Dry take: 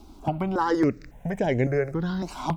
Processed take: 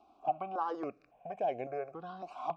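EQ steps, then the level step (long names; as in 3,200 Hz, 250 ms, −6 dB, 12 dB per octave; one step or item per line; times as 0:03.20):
formant filter a
+1.5 dB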